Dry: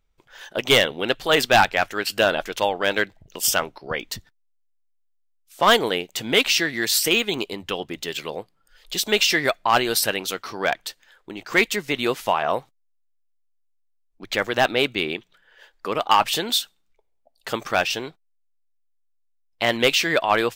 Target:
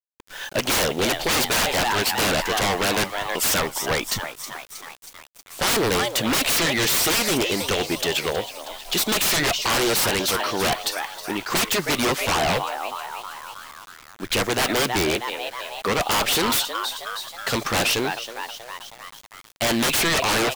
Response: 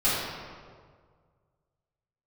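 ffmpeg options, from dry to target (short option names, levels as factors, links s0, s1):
-filter_complex "[0:a]asplit=7[s0][s1][s2][s3][s4][s5][s6];[s1]adelay=318,afreqshift=120,volume=0.168[s7];[s2]adelay=636,afreqshift=240,volume=0.104[s8];[s3]adelay=954,afreqshift=360,volume=0.0646[s9];[s4]adelay=1272,afreqshift=480,volume=0.0398[s10];[s5]adelay=1590,afreqshift=600,volume=0.0248[s11];[s6]adelay=1908,afreqshift=720,volume=0.0153[s12];[s0][s7][s8][s9][s10][s11][s12]amix=inputs=7:normalize=0,acrusher=bits=7:mix=0:aa=0.000001,aeval=exprs='0.0708*(abs(mod(val(0)/0.0708+3,4)-2)-1)':c=same,volume=2.37"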